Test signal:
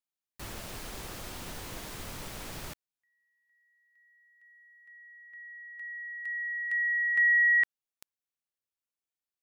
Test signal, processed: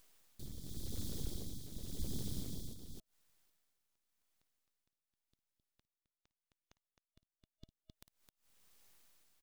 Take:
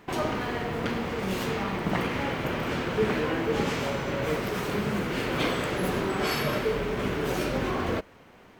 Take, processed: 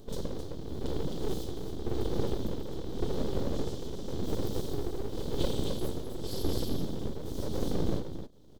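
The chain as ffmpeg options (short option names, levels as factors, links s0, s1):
-af "lowshelf=f=400:g=10.5,aecho=1:1:54|55|263:0.119|0.106|0.631,acompressor=mode=upward:threshold=0.0251:ratio=2.5:attack=0.31:release=124:knee=2.83:detection=peak,tremolo=f=0.9:d=0.57,afftfilt=real='re*(1-between(b*sr/4096,320,3200))':imag='im*(1-between(b*sr/4096,320,3200))':win_size=4096:overlap=0.75,aeval=exprs='abs(val(0))':c=same,volume=0.631"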